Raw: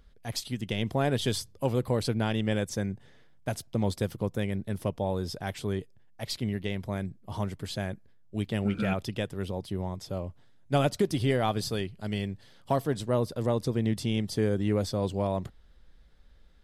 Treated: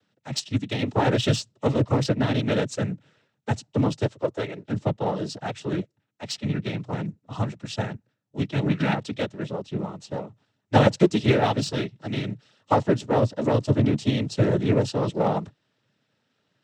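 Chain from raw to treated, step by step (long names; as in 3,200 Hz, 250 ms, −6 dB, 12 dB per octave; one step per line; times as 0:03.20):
0:04.05–0:04.67: low shelf with overshoot 300 Hz −9 dB, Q 1.5
cochlear-implant simulation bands 12
in parallel at −7.5 dB: gain into a clipping stage and back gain 30.5 dB
on the sum: expander for the loud parts 1.5 to 1, over −44 dBFS
level +7.5 dB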